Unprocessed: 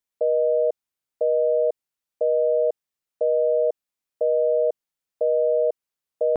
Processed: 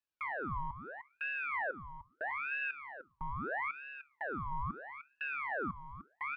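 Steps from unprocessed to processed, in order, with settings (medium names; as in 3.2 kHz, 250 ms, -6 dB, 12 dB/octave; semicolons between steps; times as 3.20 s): 0.55–2.31 s: low-pass that closes with the level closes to 530 Hz, closed at -18.5 dBFS; peaking EQ 560 Hz -9 dB 0.31 oct; peak limiter -39 dBFS, peak gain reduction 21 dB; waveshaping leveller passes 1; resonant high-pass 410 Hz, resonance Q 4.2; distance through air 160 m; delay 302 ms -8.5 dB; on a send at -20.5 dB: reverberation RT60 0.75 s, pre-delay 3 ms; on the sum: ring modulator with a swept carrier 1.3 kHz, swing 65%, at 0.77 Hz; trim +1 dB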